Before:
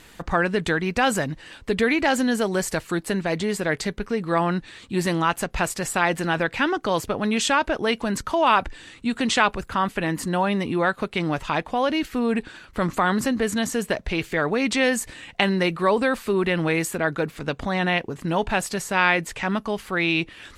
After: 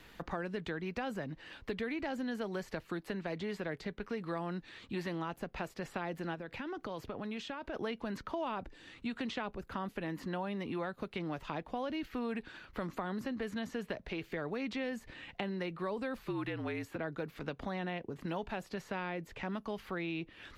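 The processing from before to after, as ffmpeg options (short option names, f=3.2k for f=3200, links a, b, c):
-filter_complex "[0:a]asplit=3[a][b][c];[a]afade=t=out:st=6.34:d=0.02[d];[b]acompressor=threshold=-29dB:ratio=4:attack=3.2:release=140:knee=1:detection=peak,afade=t=in:st=6.34:d=0.02,afade=t=out:st=7.73:d=0.02[e];[c]afade=t=in:st=7.73:d=0.02[f];[d][e][f]amix=inputs=3:normalize=0,asettb=1/sr,asplit=3[g][h][i];[g]atrim=end=16.194[j];[h]atrim=start=16.19:end=16.96,asetpts=PTS-STARTPTS,afade=t=in:d=0.004:c=qsin,afade=t=out:st=0.766:d=0.004:c=qsin,afreqshift=-52[k];[i]atrim=start=16.956[l];[j][k]acrossfade=d=0.004:c1=hsin:c2=qsin[m];[m][l]acrossfade=d=0.004:c1=qsin:c2=hsin,equalizer=f=8.6k:t=o:w=0.82:g=-13.5,acrossover=split=180|660|4800[n][o][p][q];[n]acompressor=threshold=-43dB:ratio=4[r];[o]acompressor=threshold=-32dB:ratio=4[s];[p]acompressor=threshold=-37dB:ratio=4[t];[q]acompressor=threshold=-57dB:ratio=4[u];[r][s][t][u]amix=inputs=4:normalize=0,volume=-7dB"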